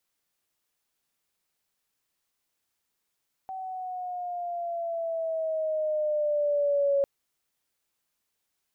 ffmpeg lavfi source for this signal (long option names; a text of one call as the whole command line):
ffmpeg -f lavfi -i "aevalsrc='pow(10,(-20.5+13*(t/3.55-1))/20)*sin(2*PI*763*3.55/(-5.5*log(2)/12)*(exp(-5.5*log(2)/12*t/3.55)-1))':duration=3.55:sample_rate=44100" out.wav